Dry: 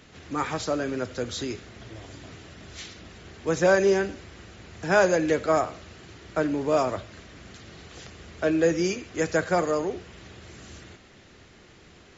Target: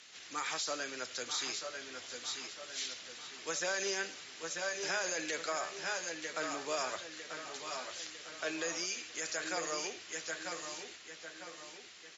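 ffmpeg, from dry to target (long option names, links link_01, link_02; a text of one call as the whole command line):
ffmpeg -i in.wav -filter_complex "[0:a]highpass=74,aderivative,asplit=2[link_01][link_02];[link_02]aecho=0:1:938:0.335[link_03];[link_01][link_03]amix=inputs=2:normalize=0,alimiter=level_in=9.5dB:limit=-24dB:level=0:latency=1:release=57,volume=-9.5dB,lowpass=6800,asplit=2[link_04][link_05];[link_05]adelay=950,lowpass=frequency=3700:poles=1,volume=-8dB,asplit=2[link_06][link_07];[link_07]adelay=950,lowpass=frequency=3700:poles=1,volume=0.54,asplit=2[link_08][link_09];[link_09]adelay=950,lowpass=frequency=3700:poles=1,volume=0.54,asplit=2[link_10][link_11];[link_11]adelay=950,lowpass=frequency=3700:poles=1,volume=0.54,asplit=2[link_12][link_13];[link_13]adelay=950,lowpass=frequency=3700:poles=1,volume=0.54,asplit=2[link_14][link_15];[link_15]adelay=950,lowpass=frequency=3700:poles=1,volume=0.54[link_16];[link_06][link_08][link_10][link_12][link_14][link_16]amix=inputs=6:normalize=0[link_17];[link_04][link_17]amix=inputs=2:normalize=0,volume=8.5dB" out.wav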